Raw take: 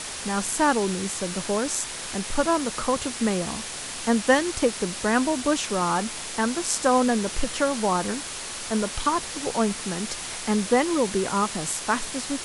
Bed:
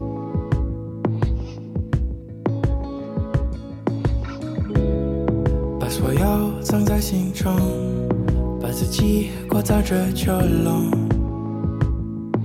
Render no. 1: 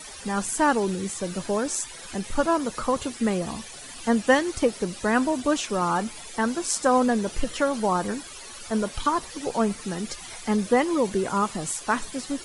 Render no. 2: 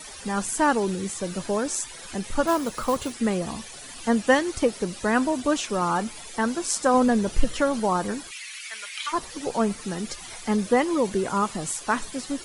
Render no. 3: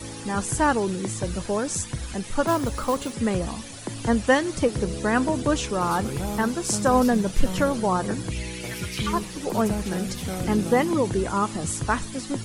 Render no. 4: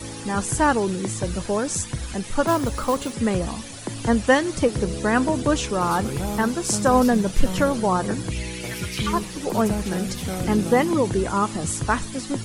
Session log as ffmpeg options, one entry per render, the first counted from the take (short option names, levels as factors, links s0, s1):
-af "afftdn=nr=14:nf=-35"
-filter_complex "[0:a]asettb=1/sr,asplit=3[s0][s1][s2];[s0]atrim=end=2.474[s3];[s1]atrim=start=2.47:end=3.14,asetpts=PTS-STARTPTS,afade=t=in:d=0.004:c=qsin,afade=t=out:st=0.666:d=0.004:c=qsin,acrusher=bits=4:mode=log:mix=0:aa=0.000001[s4];[s2]atrim=start=3.136[s5];[s3][s4]acrossfade=d=0.004:c1=hsin:c2=qsin[s6];[s6][s5]acrossfade=d=0.004:c1=qsin:c2=hsin,asettb=1/sr,asplit=3[s7][s8][s9];[s7]atrim=end=6.944[s10];[s8]atrim=start=6.94:end=7.8,asetpts=PTS-STARTPTS,afade=t=in:d=0.004:c=qsin,afade=t=out:st=0.856:d=0.004:c=qsin,lowshelf=f=160:g=8[s11];[s9]atrim=start=7.796[s12];[s10][s11]acrossfade=d=0.004:c1=hsin:c2=qsin[s13];[s13][s12]acrossfade=d=0.004:c1=qsin:c2=hsin,asplit=3[s14][s15][s16];[s14]afade=t=out:st=8.3:d=0.02[s17];[s15]highpass=f=2200:t=q:w=4.1,afade=t=in:st=8.3:d=0.02,afade=t=out:st=9.12:d=0.02[s18];[s16]afade=t=in:st=9.12:d=0.02[s19];[s17][s18][s19]amix=inputs=3:normalize=0"
-filter_complex "[1:a]volume=0.282[s0];[0:a][s0]amix=inputs=2:normalize=0"
-af "volume=1.26"